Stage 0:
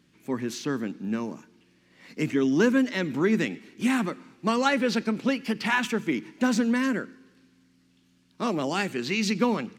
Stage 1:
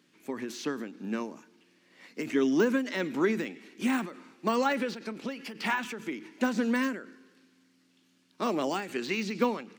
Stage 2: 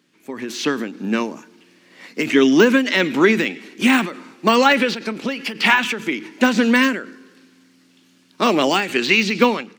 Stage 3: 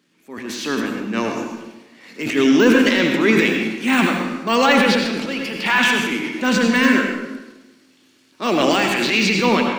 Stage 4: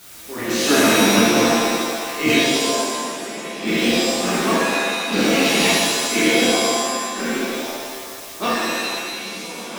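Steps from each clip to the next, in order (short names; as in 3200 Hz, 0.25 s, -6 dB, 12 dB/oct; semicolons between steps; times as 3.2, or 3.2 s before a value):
de-esser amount 95%; HPF 260 Hz 12 dB/oct; ending taper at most 110 dB/s
dynamic EQ 2900 Hz, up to +8 dB, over -49 dBFS, Q 0.98; AGC gain up to 9 dB; gain +3 dB
transient shaper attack -8 dB, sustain +8 dB; reverb RT60 1.0 s, pre-delay 73 ms, DRR 2 dB; gain -1.5 dB
in parallel at -8 dB: requantised 6-bit, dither triangular; on the sum: flipped gate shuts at -7 dBFS, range -25 dB; shimmer reverb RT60 1.5 s, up +7 st, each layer -2 dB, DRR -8.5 dB; gain -4 dB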